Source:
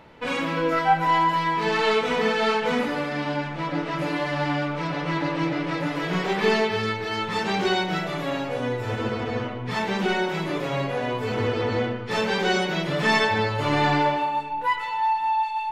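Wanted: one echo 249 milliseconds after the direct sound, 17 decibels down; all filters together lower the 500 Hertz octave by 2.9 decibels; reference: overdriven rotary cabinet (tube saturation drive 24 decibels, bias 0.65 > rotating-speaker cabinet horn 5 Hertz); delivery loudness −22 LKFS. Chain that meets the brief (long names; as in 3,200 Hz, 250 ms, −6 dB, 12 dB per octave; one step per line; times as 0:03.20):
parametric band 500 Hz −3.5 dB
single-tap delay 249 ms −17 dB
tube saturation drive 24 dB, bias 0.65
rotating-speaker cabinet horn 5 Hz
level +10.5 dB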